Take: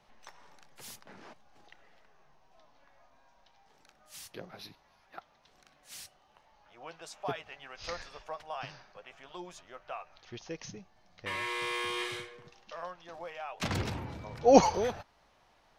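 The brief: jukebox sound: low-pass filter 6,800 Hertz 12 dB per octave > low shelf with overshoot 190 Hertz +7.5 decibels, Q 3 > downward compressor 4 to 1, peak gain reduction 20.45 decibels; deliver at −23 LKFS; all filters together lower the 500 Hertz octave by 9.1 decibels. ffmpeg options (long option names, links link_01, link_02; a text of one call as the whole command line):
ffmpeg -i in.wav -af "lowpass=6800,lowshelf=frequency=190:width_type=q:width=3:gain=7.5,equalizer=frequency=500:width_type=o:gain=-9,acompressor=threshold=-44dB:ratio=4,volume=25.5dB" out.wav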